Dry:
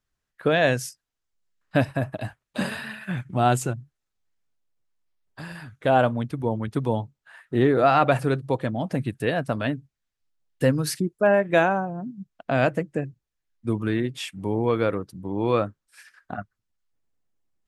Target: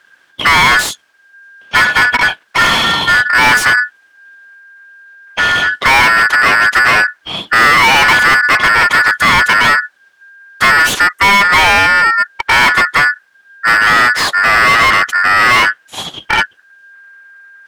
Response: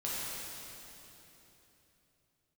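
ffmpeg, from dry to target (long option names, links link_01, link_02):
-filter_complex "[0:a]aeval=exprs='val(0)*sin(2*PI*1600*n/s)':channel_layout=same,asplit=2[link_01][link_02];[link_02]highpass=frequency=720:poles=1,volume=37dB,asoftclip=type=tanh:threshold=-6dB[link_03];[link_01][link_03]amix=inputs=2:normalize=0,lowpass=frequency=2100:poles=1,volume=-6dB,volume=6.5dB"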